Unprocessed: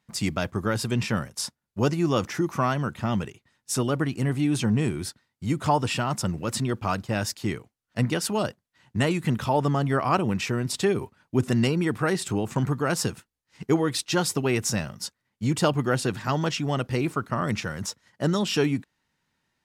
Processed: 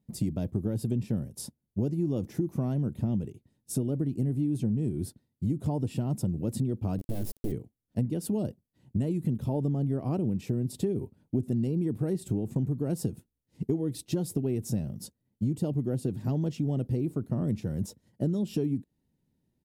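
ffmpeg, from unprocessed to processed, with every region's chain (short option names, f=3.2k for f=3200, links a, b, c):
-filter_complex "[0:a]asettb=1/sr,asplit=3[a][b][c];[a]atrim=end=6.984[d];[b]atrim=start=6.98:end=7.52,asetpts=PTS-STARTPTS,afade=t=in:d=0.004:c=qsin,afade=t=out:st=0.536:d=0.004:c=qsin,bandreject=f=70.42:t=h:w=4,bandreject=f=140.84:t=h:w=4,bandreject=f=211.26:t=h:w=4,bandreject=f=281.68:t=h:w=4,bandreject=f=352.1:t=h:w=4,bandreject=f=422.52:t=h:w=4,acrusher=bits=3:dc=4:mix=0:aa=0.000001[e];[c]atrim=start=7.516[f];[d][e]acrossfade=d=0.004:c1=hsin:c2=qsin[g];[g][f]acrossfade=d=0.004:c1=qsin:c2=hsin,firequalizer=gain_entry='entry(270,0);entry(1200,-27);entry(3700,-19);entry(5800,-20);entry(11000,-8)':delay=0.05:min_phase=1,acompressor=threshold=-31dB:ratio=6,volume=5.5dB"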